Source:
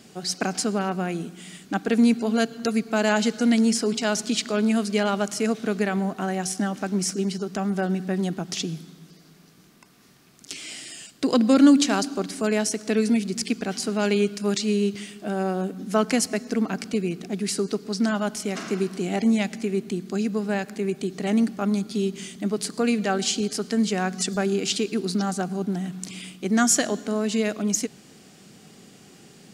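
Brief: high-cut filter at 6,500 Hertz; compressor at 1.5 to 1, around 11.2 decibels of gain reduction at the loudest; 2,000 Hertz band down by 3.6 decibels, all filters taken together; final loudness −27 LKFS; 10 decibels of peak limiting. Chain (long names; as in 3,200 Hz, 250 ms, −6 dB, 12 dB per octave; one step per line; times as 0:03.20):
low-pass filter 6,500 Hz
parametric band 2,000 Hz −5 dB
downward compressor 1.5 to 1, threshold −43 dBFS
level +9.5 dB
brickwall limiter −17.5 dBFS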